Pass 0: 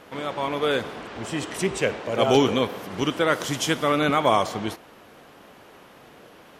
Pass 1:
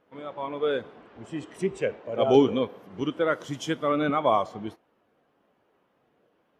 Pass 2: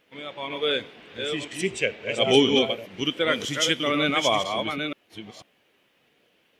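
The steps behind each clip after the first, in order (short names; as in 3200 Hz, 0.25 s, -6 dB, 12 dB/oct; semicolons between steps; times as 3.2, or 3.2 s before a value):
spectral expander 1.5:1
reverse delay 0.493 s, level -5.5 dB; resonant high shelf 1700 Hz +12 dB, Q 1.5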